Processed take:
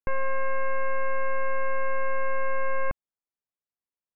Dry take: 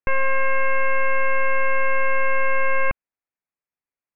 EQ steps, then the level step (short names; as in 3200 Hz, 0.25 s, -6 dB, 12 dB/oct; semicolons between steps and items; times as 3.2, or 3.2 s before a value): LPF 1400 Hz 12 dB/oct; -5.0 dB